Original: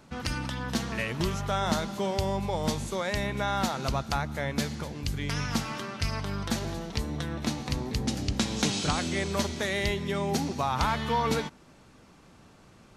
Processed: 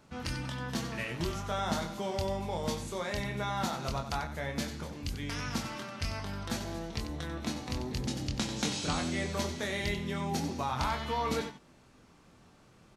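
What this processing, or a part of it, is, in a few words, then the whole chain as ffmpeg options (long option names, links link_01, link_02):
slapback doubling: -filter_complex "[0:a]asplit=3[link_01][link_02][link_03];[link_02]adelay=24,volume=-5dB[link_04];[link_03]adelay=93,volume=-10dB[link_05];[link_01][link_04][link_05]amix=inputs=3:normalize=0,volume=-6dB"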